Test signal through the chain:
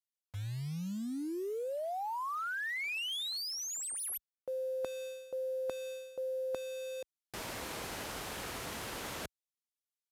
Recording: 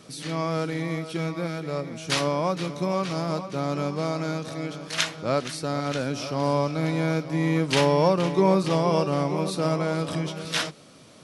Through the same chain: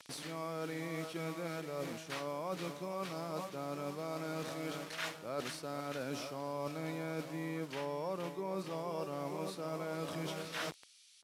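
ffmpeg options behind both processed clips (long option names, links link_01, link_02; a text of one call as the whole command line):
ffmpeg -i in.wav -filter_complex "[0:a]acrossover=split=2500[link_01][link_02];[link_01]acrusher=bits=6:mix=0:aa=0.000001[link_03];[link_02]aeval=exprs='(tanh(44.7*val(0)+0.55)-tanh(0.55))/44.7':channel_layout=same[link_04];[link_03][link_04]amix=inputs=2:normalize=0,highpass=52,bass=frequency=250:gain=-7,treble=frequency=4000:gain=-1,aresample=32000,aresample=44100,areverse,acompressor=threshold=-35dB:ratio=6,areverse,volume=-2dB" out.wav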